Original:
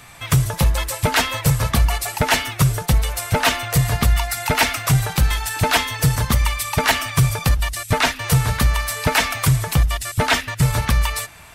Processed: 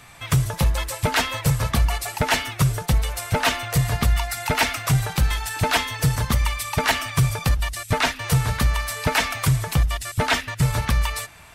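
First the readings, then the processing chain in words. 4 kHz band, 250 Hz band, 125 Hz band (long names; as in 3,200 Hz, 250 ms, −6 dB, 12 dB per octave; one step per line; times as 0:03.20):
−3.5 dB, −3.0 dB, −3.0 dB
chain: high-shelf EQ 9,900 Hz −4 dB
level −3 dB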